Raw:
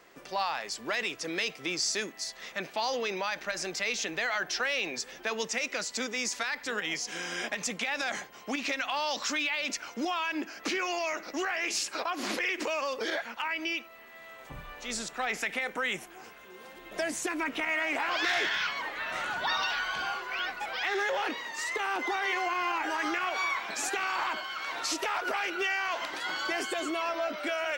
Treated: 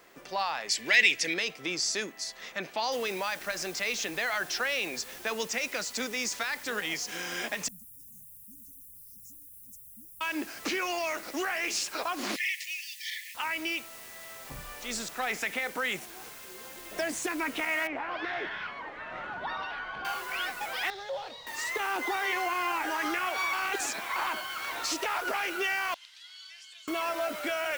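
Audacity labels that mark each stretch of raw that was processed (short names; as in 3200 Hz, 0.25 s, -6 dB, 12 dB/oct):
0.690000	1.340000	resonant high shelf 1600 Hz +7.5 dB, Q 3
2.920000	2.920000	noise floor step -69 dB -48 dB
7.680000	10.210000	inverse Chebyshev band-stop 540–3100 Hz, stop band 70 dB
12.360000	13.350000	brick-wall FIR high-pass 1700 Hz
17.870000	20.050000	tape spacing loss at 10 kHz 37 dB
20.900000	21.470000	EQ curve 150 Hz 0 dB, 320 Hz -22 dB, 550 Hz -2 dB, 1700 Hz -17 dB, 2800 Hz -14 dB, 3900 Hz 0 dB, 7600 Hz -15 dB, 13000 Hz -27 dB
23.530000	24.160000	reverse
25.940000	26.880000	ladder band-pass 4500 Hz, resonance 30%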